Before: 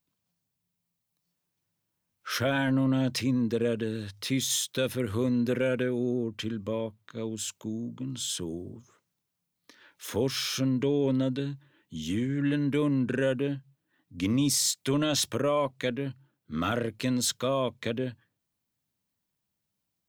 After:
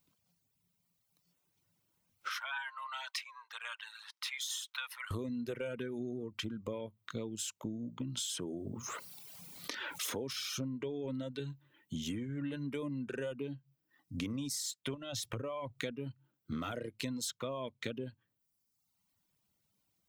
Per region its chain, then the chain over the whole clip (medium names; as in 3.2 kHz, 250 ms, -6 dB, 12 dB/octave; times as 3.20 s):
2.29–5.11 s: steep high-pass 910 Hz 48 dB/octave + treble shelf 3.7 kHz -10.5 dB + tape noise reduction on one side only decoder only
8.17–10.33 s: bass shelf 120 Hz -11.5 dB + level flattener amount 50%
14.94–15.79 s: peaking EQ 110 Hz +12.5 dB 0.31 oct + compression 5:1, threshold -30 dBFS
whole clip: band-stop 1.7 kHz, Q 13; reverb removal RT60 0.99 s; compression 8:1, threshold -42 dBFS; trim +5.5 dB